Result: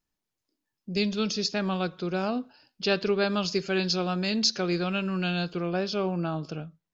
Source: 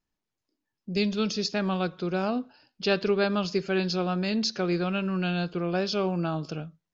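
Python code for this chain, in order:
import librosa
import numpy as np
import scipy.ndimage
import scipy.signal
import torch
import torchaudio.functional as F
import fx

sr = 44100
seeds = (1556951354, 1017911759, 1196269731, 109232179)

y = fx.high_shelf(x, sr, hz=3900.0, db=fx.steps((0.0, 4.5), (3.26, 10.0), (5.68, -3.0)))
y = y * librosa.db_to_amplitude(-1.0)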